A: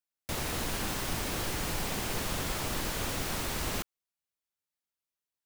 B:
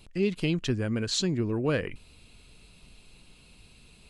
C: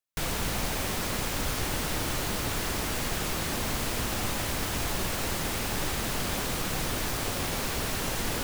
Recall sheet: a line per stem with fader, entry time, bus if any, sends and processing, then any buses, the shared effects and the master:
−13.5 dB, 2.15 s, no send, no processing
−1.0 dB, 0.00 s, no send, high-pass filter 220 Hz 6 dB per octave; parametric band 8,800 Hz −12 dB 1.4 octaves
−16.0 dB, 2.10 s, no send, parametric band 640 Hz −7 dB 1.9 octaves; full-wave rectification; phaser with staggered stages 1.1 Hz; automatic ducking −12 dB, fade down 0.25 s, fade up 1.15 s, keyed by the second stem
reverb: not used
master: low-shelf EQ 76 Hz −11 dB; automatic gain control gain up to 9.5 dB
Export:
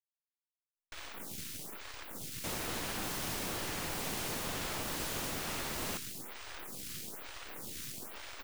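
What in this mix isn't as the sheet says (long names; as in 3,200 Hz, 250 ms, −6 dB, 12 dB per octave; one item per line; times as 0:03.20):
stem B: muted
stem C: entry 2.10 s → 0.75 s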